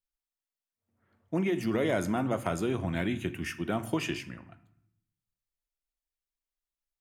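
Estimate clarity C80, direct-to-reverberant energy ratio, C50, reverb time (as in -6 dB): 18.0 dB, 11.0 dB, 15.0 dB, 0.75 s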